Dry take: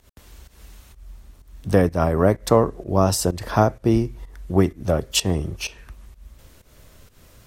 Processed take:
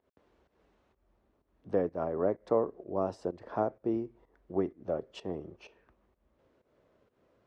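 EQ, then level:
resonant band-pass 400 Hz, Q 0.95
high-frequency loss of the air 67 metres
low-shelf EQ 340 Hz −8 dB
−6.5 dB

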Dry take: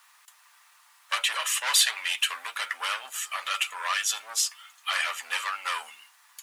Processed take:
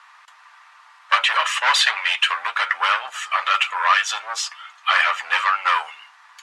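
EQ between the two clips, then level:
band-pass filter 300–5,600 Hz
parametric band 1,100 Hz +12.5 dB 2.8 octaves
+1.0 dB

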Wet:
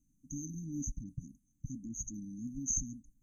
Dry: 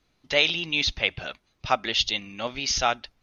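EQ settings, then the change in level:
linear-phase brick-wall band-stop 310–6,000 Hz
parametric band 74 Hz −8.5 dB 0.98 octaves
0.0 dB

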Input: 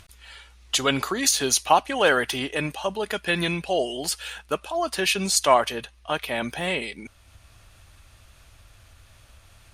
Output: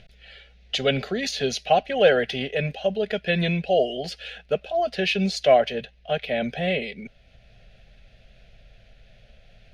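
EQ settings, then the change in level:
Butterworth band-reject 910 Hz, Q 3.9
high-frequency loss of the air 280 metres
phaser with its sweep stopped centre 310 Hz, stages 6
+6.0 dB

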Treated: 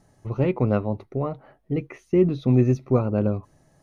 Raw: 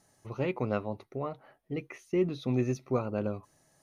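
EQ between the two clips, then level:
spectral tilt −2.5 dB per octave
+5.0 dB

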